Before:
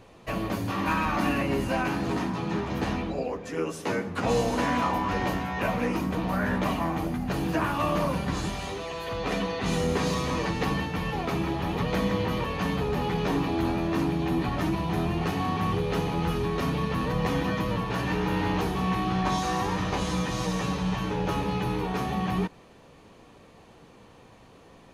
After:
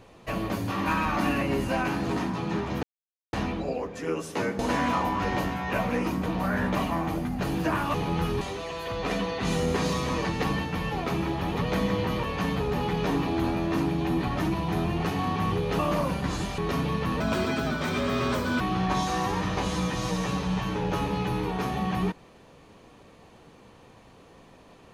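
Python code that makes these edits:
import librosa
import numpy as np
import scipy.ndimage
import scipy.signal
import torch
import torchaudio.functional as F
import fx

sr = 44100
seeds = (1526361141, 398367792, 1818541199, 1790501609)

y = fx.edit(x, sr, fx.insert_silence(at_s=2.83, length_s=0.5),
    fx.cut(start_s=4.09, length_s=0.39),
    fx.swap(start_s=7.83, length_s=0.79, other_s=16.0, other_length_s=0.47),
    fx.speed_span(start_s=17.09, length_s=1.87, speed=1.33), tone=tone)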